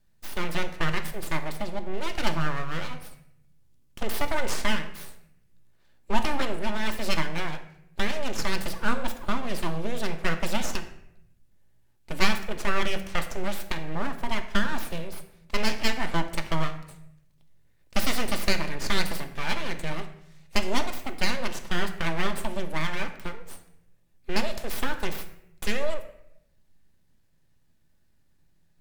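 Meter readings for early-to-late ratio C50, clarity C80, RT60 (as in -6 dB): 11.0 dB, 13.5 dB, 0.80 s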